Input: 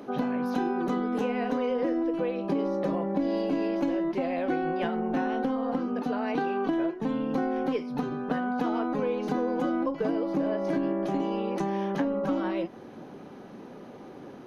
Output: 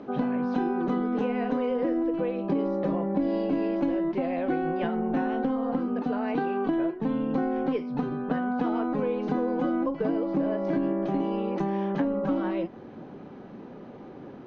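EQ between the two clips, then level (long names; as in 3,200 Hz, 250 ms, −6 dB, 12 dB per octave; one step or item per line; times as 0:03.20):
high-frequency loss of the air 170 metres
low-shelf EQ 230 Hz +4.5 dB
0.0 dB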